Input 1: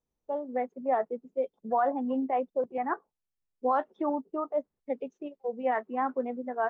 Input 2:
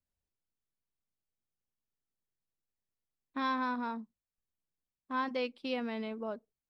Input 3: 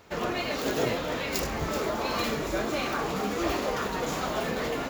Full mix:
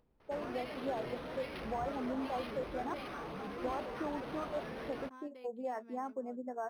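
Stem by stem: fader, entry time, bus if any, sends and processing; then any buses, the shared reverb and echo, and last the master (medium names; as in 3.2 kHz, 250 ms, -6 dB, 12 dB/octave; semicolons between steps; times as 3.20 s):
-3.5 dB, 0.00 s, bus A, no send, treble shelf 2.3 kHz -11.5 dB; upward compressor, threshold -55 dBFS
-15.0 dB, 0.00 s, bus A, no send, compression, threshold -35 dBFS, peak gain reduction 6.5 dB
-10.0 dB, 0.20 s, no bus, no send, saturation -27.5 dBFS, distortion -12 dB; vibrato with a chosen wave saw up 5.2 Hz, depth 100 cents
bus A: 0.0 dB, compression 2.5:1, threshold -38 dBFS, peak gain reduction 8 dB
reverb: none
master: decimation joined by straight lines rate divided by 6×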